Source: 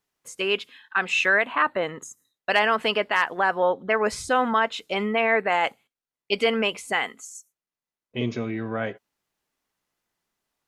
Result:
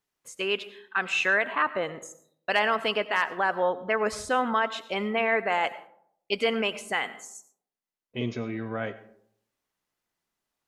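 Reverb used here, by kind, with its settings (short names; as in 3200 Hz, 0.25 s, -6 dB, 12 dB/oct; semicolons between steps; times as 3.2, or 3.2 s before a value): digital reverb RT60 0.67 s, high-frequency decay 0.4×, pre-delay 55 ms, DRR 15 dB; gain -3.5 dB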